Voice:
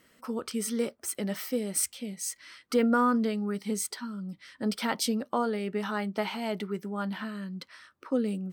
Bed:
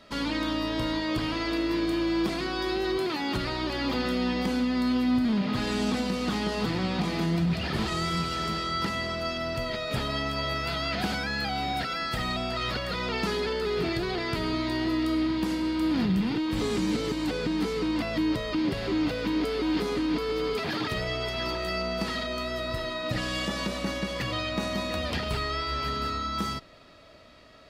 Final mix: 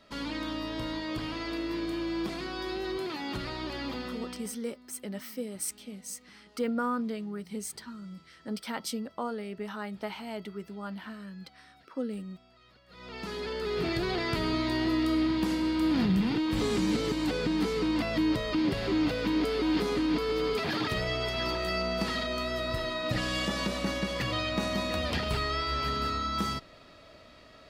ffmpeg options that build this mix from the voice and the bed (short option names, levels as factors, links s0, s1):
-filter_complex "[0:a]adelay=3850,volume=0.501[s0];[1:a]volume=15,afade=t=out:st=3.76:d=0.83:silence=0.0630957,afade=t=in:st=12.87:d=1.2:silence=0.0334965[s1];[s0][s1]amix=inputs=2:normalize=0"